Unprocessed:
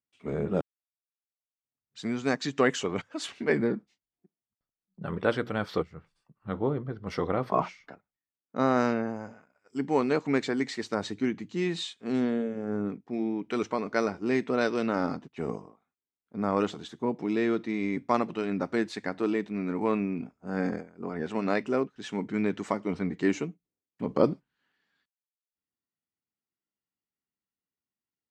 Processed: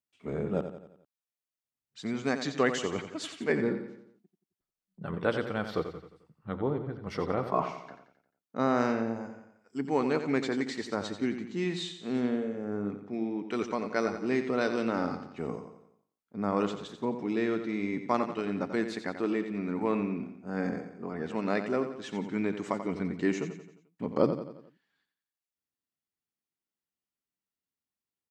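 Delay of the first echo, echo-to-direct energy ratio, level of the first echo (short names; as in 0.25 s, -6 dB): 88 ms, -8.5 dB, -9.5 dB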